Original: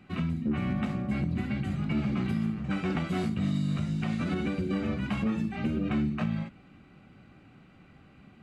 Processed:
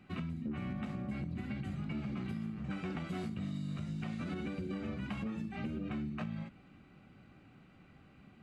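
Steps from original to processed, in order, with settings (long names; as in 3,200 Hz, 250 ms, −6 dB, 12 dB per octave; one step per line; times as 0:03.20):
downward compressor, threshold −31 dBFS, peak gain reduction 7 dB
level −4.5 dB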